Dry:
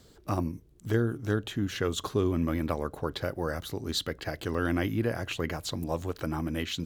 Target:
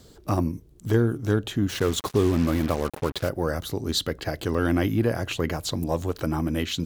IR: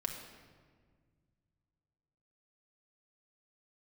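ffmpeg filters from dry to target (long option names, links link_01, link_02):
-filter_complex "[0:a]equalizer=frequency=1900:width_type=o:width=1.6:gain=-3.5,asplit=2[link_01][link_02];[link_02]asoftclip=type=hard:threshold=-22dB,volume=-9dB[link_03];[link_01][link_03]amix=inputs=2:normalize=0,asettb=1/sr,asplit=3[link_04][link_05][link_06];[link_04]atrim=end=1.694[link_07];[link_05]atrim=start=1.69:end=3.29,asetpts=PTS-STARTPTS,afade=type=in:duration=0.004:curve=qsin,afade=type=out:start_time=1.596:duration=0.004:curve=qsin,acrusher=bits=5:mix=0:aa=0.5[link_08];[link_06]atrim=start=3.286[link_09];[link_07][link_08]acrossfade=duration=0.004:curve1=hsin:curve2=qsin[link_10];[link_10][link_09]acrossfade=duration=0.004:curve1=qsin:curve2=hsin,volume=3.5dB"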